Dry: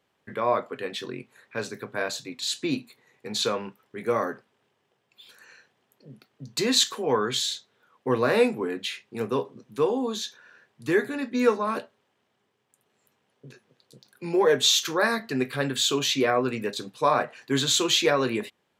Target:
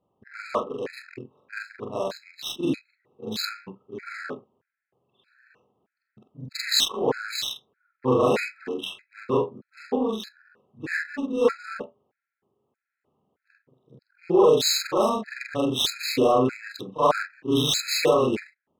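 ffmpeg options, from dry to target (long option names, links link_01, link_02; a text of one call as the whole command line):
ffmpeg -i in.wav -af "afftfilt=real='re':imag='-im':win_size=4096:overlap=0.75,adynamicsmooth=sensitivity=7:basefreq=1100,afftfilt=real='re*gt(sin(2*PI*1.6*pts/sr)*(1-2*mod(floor(b*sr/1024/1300),2)),0)':imag='im*gt(sin(2*PI*1.6*pts/sr)*(1-2*mod(floor(b*sr/1024/1300),2)),0)':win_size=1024:overlap=0.75,volume=8dB" out.wav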